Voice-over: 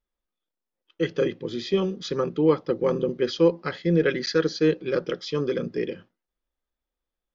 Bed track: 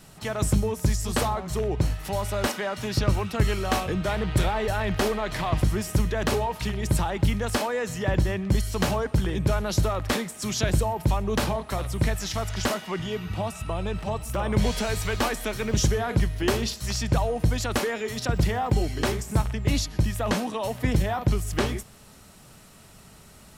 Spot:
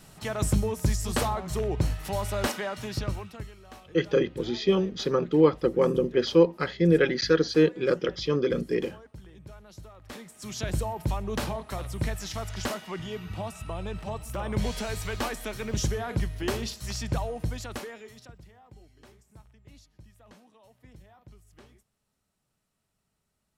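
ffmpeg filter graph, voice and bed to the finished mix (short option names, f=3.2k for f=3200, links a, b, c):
-filter_complex "[0:a]adelay=2950,volume=0.5dB[a];[1:a]volume=15.5dB,afade=t=out:st=2.52:d=0.99:silence=0.0891251,afade=t=in:st=10:d=0.83:silence=0.133352,afade=t=out:st=17.09:d=1.3:silence=0.0668344[b];[a][b]amix=inputs=2:normalize=0"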